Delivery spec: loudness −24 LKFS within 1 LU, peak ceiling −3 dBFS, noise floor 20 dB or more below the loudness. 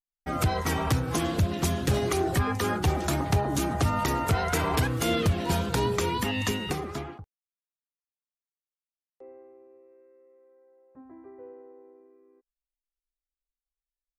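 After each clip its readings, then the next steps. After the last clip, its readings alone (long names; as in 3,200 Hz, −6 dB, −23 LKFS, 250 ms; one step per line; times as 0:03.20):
integrated loudness −27.0 LKFS; sample peak −14.5 dBFS; target loudness −24.0 LKFS
→ level +3 dB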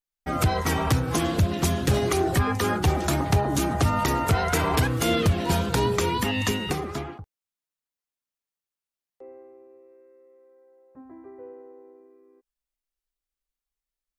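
integrated loudness −24.0 LKFS; sample peak −11.5 dBFS; background noise floor −92 dBFS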